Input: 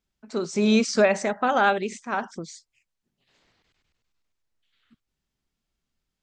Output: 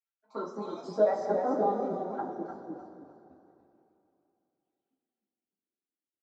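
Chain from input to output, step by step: random holes in the spectrogram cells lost 39%; high-pass 140 Hz 24 dB/octave; treble shelf 6.4 kHz -7.5 dB; level held to a coarse grid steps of 14 dB; waveshaping leveller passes 1; touch-sensitive phaser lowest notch 180 Hz, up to 2.6 kHz, full sweep at -40 dBFS; band-pass sweep 1.4 kHz -> 370 Hz, 0.01–1.51 s; frequency-shifting echo 302 ms, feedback 31%, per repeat -31 Hz, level -6 dB; two-slope reverb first 0.22 s, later 2.9 s, from -18 dB, DRR -9.5 dB

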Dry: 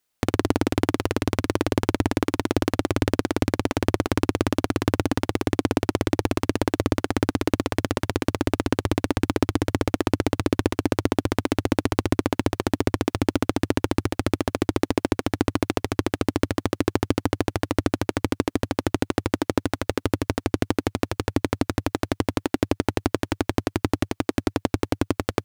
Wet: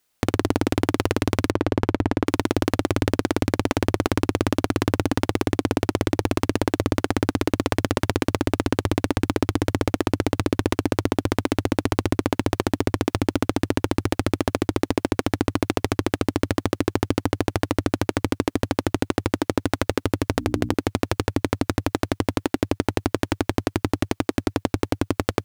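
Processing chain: 1.50–2.27 s: low-pass 2 kHz 6 dB/octave; 20.32–20.74 s: hum notches 60/120/180/240/300 Hz; in parallel at 0 dB: compressor with a negative ratio -26 dBFS, ratio -1; on the sum: trim -3 dB

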